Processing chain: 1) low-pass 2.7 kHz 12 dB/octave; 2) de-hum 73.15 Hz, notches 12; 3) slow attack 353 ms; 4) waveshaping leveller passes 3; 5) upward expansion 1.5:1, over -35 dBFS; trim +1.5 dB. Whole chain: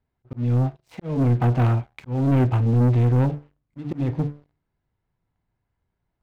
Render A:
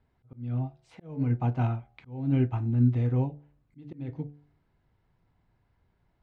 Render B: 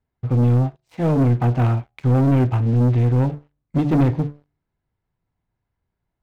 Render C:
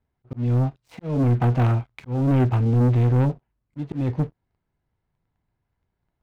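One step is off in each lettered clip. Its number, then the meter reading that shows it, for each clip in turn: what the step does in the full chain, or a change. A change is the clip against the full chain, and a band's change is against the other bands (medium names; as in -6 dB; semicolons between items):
4, crest factor change +7.5 dB; 3, momentary loudness spread change -6 LU; 2, momentary loudness spread change -1 LU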